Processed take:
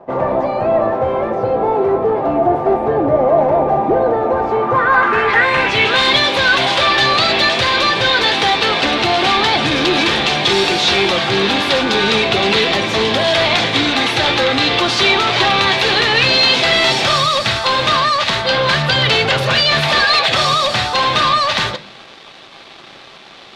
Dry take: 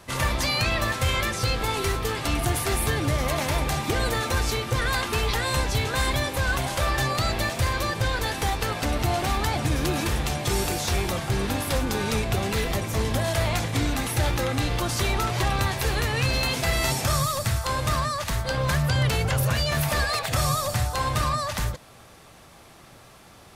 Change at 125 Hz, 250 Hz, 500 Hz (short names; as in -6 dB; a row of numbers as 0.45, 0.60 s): -0.5, +9.5, +14.0 dB